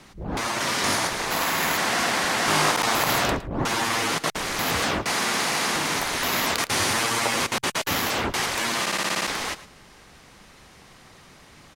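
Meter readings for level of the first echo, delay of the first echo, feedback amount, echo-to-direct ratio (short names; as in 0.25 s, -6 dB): -16.5 dB, 0.111 s, no steady repeat, -16.5 dB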